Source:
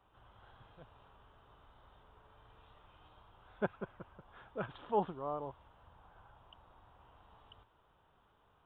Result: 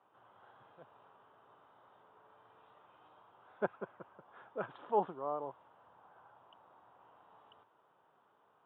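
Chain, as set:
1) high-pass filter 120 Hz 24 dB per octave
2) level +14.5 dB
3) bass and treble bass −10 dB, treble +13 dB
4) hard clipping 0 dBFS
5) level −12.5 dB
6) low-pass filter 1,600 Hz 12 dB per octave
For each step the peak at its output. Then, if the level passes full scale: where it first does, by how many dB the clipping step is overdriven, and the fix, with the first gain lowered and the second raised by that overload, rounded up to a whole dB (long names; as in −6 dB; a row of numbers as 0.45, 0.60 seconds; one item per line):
−17.0, −2.5, −4.0, −4.0, −16.5, −17.5 dBFS
no step passes full scale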